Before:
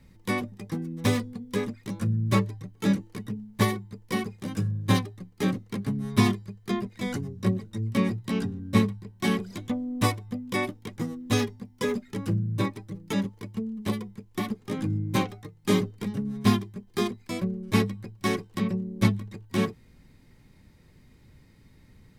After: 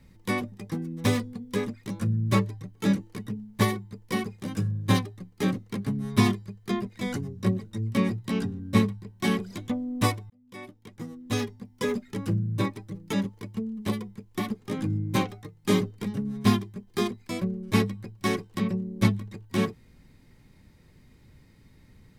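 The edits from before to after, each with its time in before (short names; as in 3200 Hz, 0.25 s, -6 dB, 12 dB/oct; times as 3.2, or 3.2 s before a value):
10.3–11.91 fade in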